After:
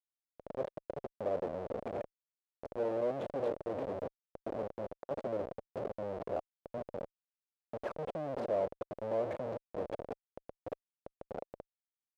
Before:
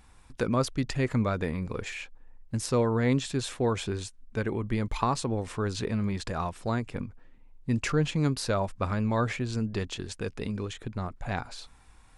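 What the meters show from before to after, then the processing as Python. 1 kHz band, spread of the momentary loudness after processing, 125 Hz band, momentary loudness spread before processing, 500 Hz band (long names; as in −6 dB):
−10.0 dB, 14 LU, −21.5 dB, 10 LU, −4.0 dB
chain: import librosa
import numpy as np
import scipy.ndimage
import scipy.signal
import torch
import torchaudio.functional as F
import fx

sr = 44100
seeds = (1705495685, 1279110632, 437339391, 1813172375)

p1 = fx.env_flanger(x, sr, rest_ms=7.3, full_db=-23.0)
p2 = p1 + fx.echo_single(p1, sr, ms=680, db=-17.5, dry=0)
p3 = fx.auto_swell(p2, sr, attack_ms=229.0)
p4 = fx.schmitt(p3, sr, flips_db=-34.5)
p5 = fx.bandpass_q(p4, sr, hz=560.0, q=3.6)
y = p5 * librosa.db_to_amplitude(10.5)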